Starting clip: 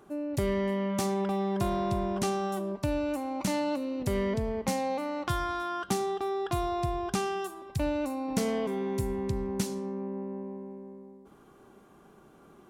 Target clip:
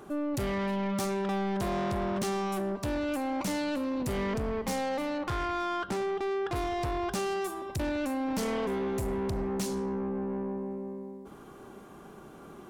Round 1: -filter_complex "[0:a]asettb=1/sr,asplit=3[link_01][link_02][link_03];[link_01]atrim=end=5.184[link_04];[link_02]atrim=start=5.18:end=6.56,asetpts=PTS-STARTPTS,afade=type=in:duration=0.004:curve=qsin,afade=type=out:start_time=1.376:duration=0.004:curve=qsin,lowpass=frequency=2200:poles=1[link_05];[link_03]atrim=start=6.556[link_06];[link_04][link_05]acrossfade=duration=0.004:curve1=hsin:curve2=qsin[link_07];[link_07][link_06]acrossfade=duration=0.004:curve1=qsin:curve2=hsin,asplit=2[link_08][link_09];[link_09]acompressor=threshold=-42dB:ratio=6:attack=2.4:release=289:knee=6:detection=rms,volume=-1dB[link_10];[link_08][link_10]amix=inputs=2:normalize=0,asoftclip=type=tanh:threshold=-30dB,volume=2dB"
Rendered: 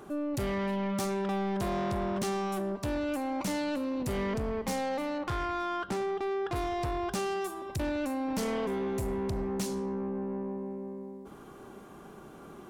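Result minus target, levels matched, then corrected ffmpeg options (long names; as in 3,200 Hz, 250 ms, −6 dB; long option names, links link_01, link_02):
downward compressor: peak gain reduction +9.5 dB
-filter_complex "[0:a]asettb=1/sr,asplit=3[link_01][link_02][link_03];[link_01]atrim=end=5.184[link_04];[link_02]atrim=start=5.18:end=6.56,asetpts=PTS-STARTPTS,afade=type=in:duration=0.004:curve=qsin,afade=type=out:start_time=1.376:duration=0.004:curve=qsin,lowpass=frequency=2200:poles=1[link_05];[link_03]atrim=start=6.556[link_06];[link_04][link_05]acrossfade=duration=0.004:curve1=hsin:curve2=qsin[link_07];[link_07][link_06]acrossfade=duration=0.004:curve1=qsin:curve2=hsin,asplit=2[link_08][link_09];[link_09]acompressor=threshold=-30.5dB:ratio=6:attack=2.4:release=289:knee=6:detection=rms,volume=-1dB[link_10];[link_08][link_10]amix=inputs=2:normalize=0,asoftclip=type=tanh:threshold=-30dB,volume=2dB"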